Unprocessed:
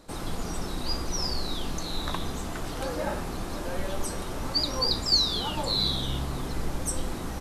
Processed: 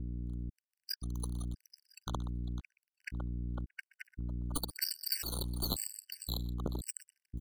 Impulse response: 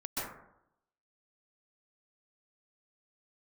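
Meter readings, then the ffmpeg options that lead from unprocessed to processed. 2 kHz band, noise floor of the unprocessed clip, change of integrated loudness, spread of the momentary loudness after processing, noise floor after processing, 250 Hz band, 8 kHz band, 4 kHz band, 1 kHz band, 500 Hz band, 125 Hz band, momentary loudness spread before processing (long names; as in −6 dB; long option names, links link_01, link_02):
−11.0 dB, −35 dBFS, −10.5 dB, 13 LU, below −85 dBFS, −9.5 dB, −7.0 dB, −15.0 dB, −17.0 dB, −17.5 dB, −5.0 dB, 11 LU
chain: -filter_complex "[0:a]acrusher=bits=2:mix=0:aa=0.5,highpass=160,afftdn=noise_reduction=21:noise_floor=-45,asplit=2[link_01][link_02];[link_02]aecho=0:1:124:0.0944[link_03];[link_01][link_03]amix=inputs=2:normalize=0,acrossover=split=690|1500[link_04][link_05][link_06];[link_04]acompressor=threshold=-41dB:ratio=4[link_07];[link_05]acompressor=threshold=-52dB:ratio=4[link_08];[link_06]acompressor=threshold=-34dB:ratio=4[link_09];[link_07][link_08][link_09]amix=inputs=3:normalize=0,aeval=exprs='val(0)+0.00251*(sin(2*PI*60*n/s)+sin(2*PI*2*60*n/s)/2+sin(2*PI*3*60*n/s)/3+sin(2*PI*4*60*n/s)/4+sin(2*PI*5*60*n/s)/5)':channel_layout=same,highshelf=frequency=9300:gain=9,asplit=2[link_10][link_11];[link_11]aecho=0:1:501|1002:0.168|0.0403[link_12];[link_10][link_12]amix=inputs=2:normalize=0,acompressor=threshold=-38dB:ratio=6,aeval=exprs='(tanh(126*val(0)+0.65)-tanh(0.65))/126':channel_layout=same,afftfilt=real='re*gt(sin(2*PI*0.95*pts/sr)*(1-2*mod(floor(b*sr/1024/1500),2)),0)':imag='im*gt(sin(2*PI*0.95*pts/sr)*(1-2*mod(floor(b*sr/1024/1500),2)),0)':win_size=1024:overlap=0.75,volume=18dB"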